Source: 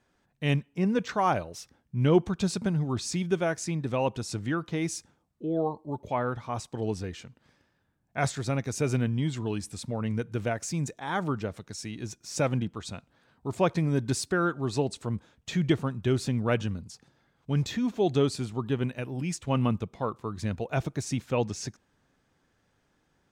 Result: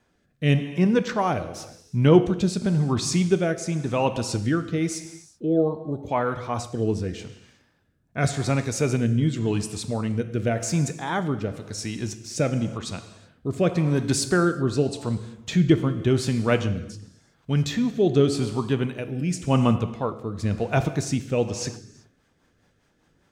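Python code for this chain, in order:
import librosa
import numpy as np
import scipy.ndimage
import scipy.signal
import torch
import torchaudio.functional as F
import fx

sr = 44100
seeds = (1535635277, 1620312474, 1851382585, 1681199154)

y = fx.rev_gated(x, sr, seeds[0], gate_ms=410, shape='falling', drr_db=9.0)
y = fx.rotary_switch(y, sr, hz=0.9, then_hz=5.0, switch_at_s=21.34)
y = y * librosa.db_to_amplitude(7.0)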